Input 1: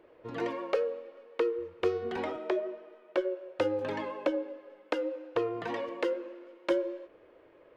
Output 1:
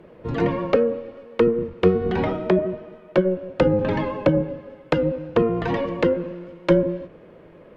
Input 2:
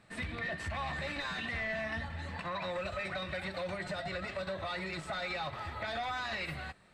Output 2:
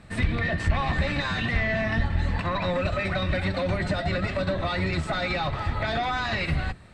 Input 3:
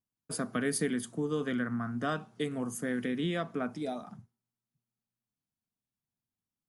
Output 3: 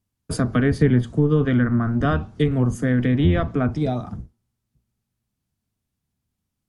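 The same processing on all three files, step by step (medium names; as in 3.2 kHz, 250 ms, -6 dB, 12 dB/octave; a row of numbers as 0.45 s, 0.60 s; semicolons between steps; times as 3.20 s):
octave divider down 1 oct, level -1 dB; low-pass that closes with the level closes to 2.4 kHz, closed at -25.5 dBFS; bass shelf 270 Hz +7.5 dB; trim +8.5 dB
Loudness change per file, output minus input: +11.5 LU, +10.5 LU, +13.5 LU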